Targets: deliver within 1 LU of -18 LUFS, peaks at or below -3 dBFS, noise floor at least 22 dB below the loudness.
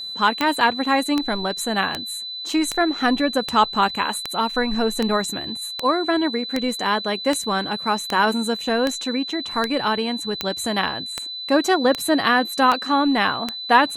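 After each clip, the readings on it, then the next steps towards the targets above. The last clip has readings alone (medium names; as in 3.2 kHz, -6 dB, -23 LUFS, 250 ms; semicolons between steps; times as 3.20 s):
clicks found 18; steady tone 4 kHz; tone level -29 dBFS; loudness -21.0 LUFS; peak level -3.5 dBFS; loudness target -18.0 LUFS
-> de-click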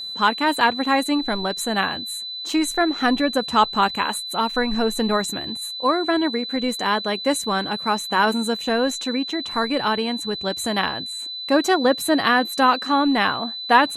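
clicks found 0; steady tone 4 kHz; tone level -29 dBFS
-> band-stop 4 kHz, Q 30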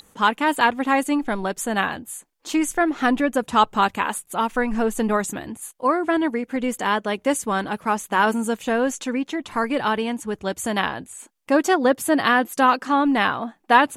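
steady tone not found; loudness -22.0 LUFS; peak level -3.5 dBFS; loudness target -18.0 LUFS
-> trim +4 dB; peak limiter -3 dBFS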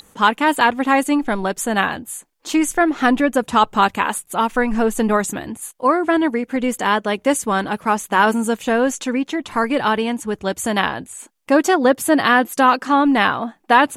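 loudness -18.0 LUFS; peak level -3.0 dBFS; noise floor -57 dBFS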